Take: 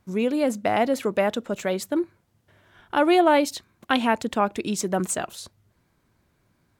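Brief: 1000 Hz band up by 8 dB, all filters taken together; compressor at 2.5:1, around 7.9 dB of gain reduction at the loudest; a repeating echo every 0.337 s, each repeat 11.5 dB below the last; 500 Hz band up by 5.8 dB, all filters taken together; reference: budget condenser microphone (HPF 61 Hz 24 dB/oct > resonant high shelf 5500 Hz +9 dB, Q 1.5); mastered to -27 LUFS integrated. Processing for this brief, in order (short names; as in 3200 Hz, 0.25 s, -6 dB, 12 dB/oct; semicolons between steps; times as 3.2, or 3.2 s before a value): bell 500 Hz +4.5 dB; bell 1000 Hz +9 dB; compressor 2.5:1, threshold -19 dBFS; HPF 61 Hz 24 dB/oct; resonant high shelf 5500 Hz +9 dB, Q 1.5; feedback echo 0.337 s, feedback 27%, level -11.5 dB; gain -4.5 dB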